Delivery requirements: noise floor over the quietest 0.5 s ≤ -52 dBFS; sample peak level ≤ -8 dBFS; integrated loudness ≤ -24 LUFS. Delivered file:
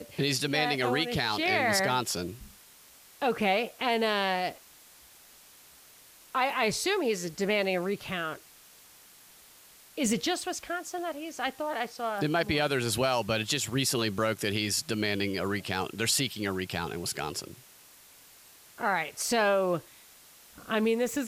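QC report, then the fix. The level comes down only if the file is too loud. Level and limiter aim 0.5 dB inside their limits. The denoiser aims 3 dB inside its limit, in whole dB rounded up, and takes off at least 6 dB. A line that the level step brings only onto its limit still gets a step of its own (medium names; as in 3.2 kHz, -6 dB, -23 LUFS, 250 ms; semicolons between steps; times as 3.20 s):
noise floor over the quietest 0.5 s -55 dBFS: pass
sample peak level -14.5 dBFS: pass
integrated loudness -29.0 LUFS: pass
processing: none needed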